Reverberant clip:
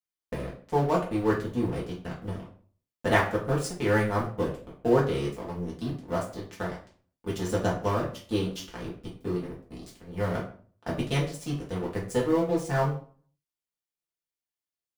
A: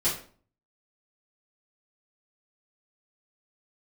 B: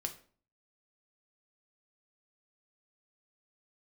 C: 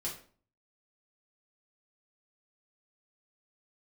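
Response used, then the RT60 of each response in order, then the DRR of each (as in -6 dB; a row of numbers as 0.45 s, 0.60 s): C; 0.45 s, 0.45 s, 0.45 s; -11.5 dB, 4.5 dB, -5.5 dB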